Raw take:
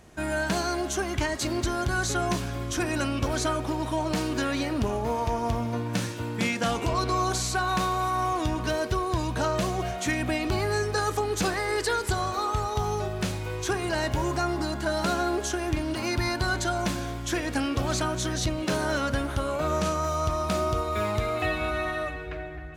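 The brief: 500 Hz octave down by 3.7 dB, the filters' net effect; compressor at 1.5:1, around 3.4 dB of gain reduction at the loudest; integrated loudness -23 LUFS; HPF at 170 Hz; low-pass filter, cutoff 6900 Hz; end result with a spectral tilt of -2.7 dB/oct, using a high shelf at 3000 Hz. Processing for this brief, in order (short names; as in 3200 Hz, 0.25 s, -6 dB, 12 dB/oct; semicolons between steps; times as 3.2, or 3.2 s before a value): HPF 170 Hz; LPF 6900 Hz; bell 500 Hz -5.5 dB; high shelf 3000 Hz +8 dB; compressor 1.5:1, threshold -32 dBFS; gain +8 dB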